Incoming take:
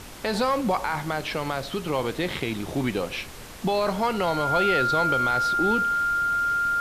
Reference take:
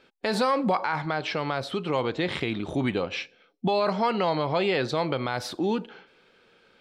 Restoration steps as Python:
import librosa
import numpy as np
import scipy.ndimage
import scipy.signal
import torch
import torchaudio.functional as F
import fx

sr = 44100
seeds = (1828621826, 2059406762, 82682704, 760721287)

y = fx.notch(x, sr, hz=1400.0, q=30.0)
y = fx.noise_reduce(y, sr, print_start_s=3.14, print_end_s=3.64, reduce_db=22.0)